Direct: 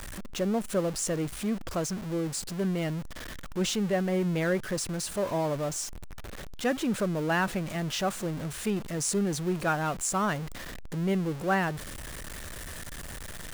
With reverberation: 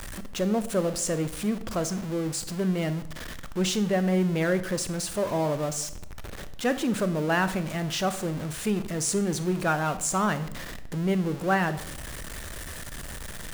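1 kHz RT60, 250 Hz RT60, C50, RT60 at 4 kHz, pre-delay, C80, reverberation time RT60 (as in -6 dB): 0.70 s, 0.85 s, 13.5 dB, 0.55 s, 24 ms, 16.5 dB, 0.75 s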